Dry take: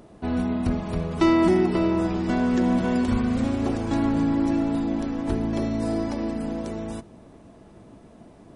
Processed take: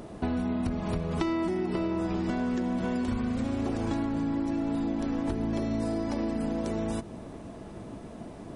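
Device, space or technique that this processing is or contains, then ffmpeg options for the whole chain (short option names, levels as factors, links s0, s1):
serial compression, leveller first: -af "acompressor=threshold=0.0708:ratio=2.5,acompressor=threshold=0.0224:ratio=6,volume=2"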